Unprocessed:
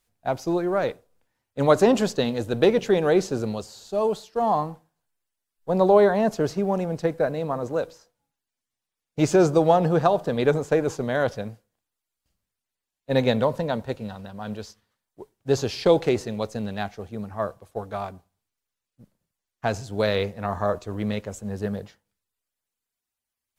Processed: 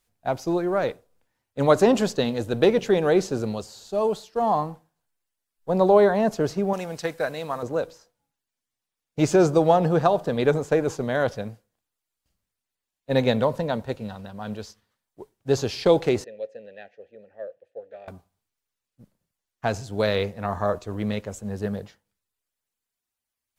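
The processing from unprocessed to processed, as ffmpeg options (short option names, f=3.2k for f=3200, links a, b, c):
-filter_complex "[0:a]asettb=1/sr,asplit=3[a][b][c];[a]atrim=end=6.734[d];[b]atrim=start=6.73:end=7.63,asetpts=PTS-STARTPTS,afade=t=in:d=0.004:c=qsin,afade=t=out:st=0.896:d=0.004:c=qsin,tiltshelf=f=970:g=-8[e];[c]atrim=start=7.626[f];[d][e]acrossfade=d=0.004:c1=hsin:c2=qsin[g];[g][f]acrossfade=d=0.004:c1=qsin:c2=hsin,asettb=1/sr,asplit=3[h][i][j];[h]atrim=end=16.244[k];[i]atrim=start=16.24:end=18.08,asetpts=PTS-STARTPTS,afade=t=in:d=0.004:c=qsin,afade=t=out:st=1.836:d=0.004:c=qsin,asplit=3[l][m][n];[l]bandpass=f=530:t=q:w=8,volume=0dB[o];[m]bandpass=f=1.84k:t=q:w=8,volume=-6dB[p];[n]bandpass=f=2.48k:t=q:w=8,volume=-9dB[q];[o][p][q]amix=inputs=3:normalize=0[r];[j]atrim=start=18.076[s];[k][r]acrossfade=d=0.004:c1=hsin:c2=qsin[t];[t][s]acrossfade=d=0.004:c1=qsin:c2=hsin"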